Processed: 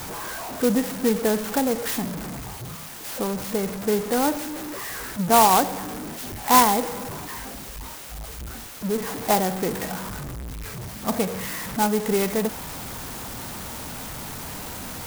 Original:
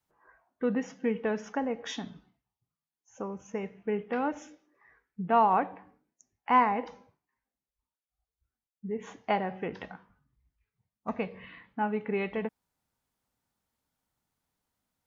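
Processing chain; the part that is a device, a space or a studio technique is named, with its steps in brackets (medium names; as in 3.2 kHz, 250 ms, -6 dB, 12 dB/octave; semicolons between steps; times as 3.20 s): early CD player with a faulty converter (jump at every zero crossing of -33.5 dBFS; sampling jitter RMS 0.086 ms); trim +6.5 dB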